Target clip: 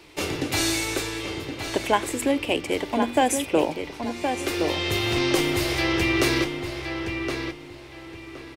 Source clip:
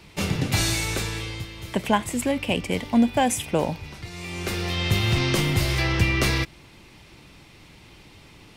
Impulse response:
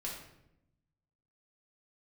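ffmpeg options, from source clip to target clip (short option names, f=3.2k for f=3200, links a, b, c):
-filter_complex "[0:a]lowshelf=f=250:t=q:w=3:g=-6.5,bandreject=f=60:t=h:w=6,bandreject=f=120:t=h:w=6,bandreject=f=180:t=h:w=6,bandreject=f=240:t=h:w=6,asplit=2[a][b];[b]adelay=1068,lowpass=f=3.4k:p=1,volume=-6dB,asplit=2[c][d];[d]adelay=1068,lowpass=f=3.4k:p=1,volume=0.28,asplit=2[e][f];[f]adelay=1068,lowpass=f=3.4k:p=1,volume=0.28,asplit=2[g][h];[h]adelay=1068,lowpass=f=3.4k:p=1,volume=0.28[i];[c][e][g][i]amix=inputs=4:normalize=0[j];[a][j]amix=inputs=2:normalize=0"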